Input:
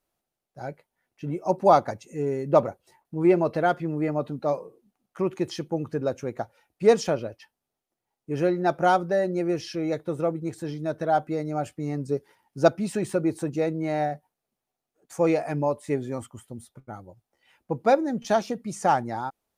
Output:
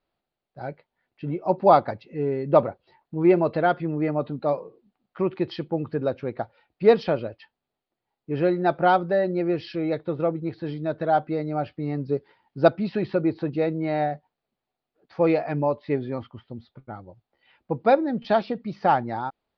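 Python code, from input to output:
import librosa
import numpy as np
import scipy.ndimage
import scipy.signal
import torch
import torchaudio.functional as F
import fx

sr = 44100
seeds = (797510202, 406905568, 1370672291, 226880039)

y = scipy.signal.sosfilt(scipy.signal.butter(12, 4700.0, 'lowpass', fs=sr, output='sos'), x)
y = F.gain(torch.from_numpy(y), 1.5).numpy()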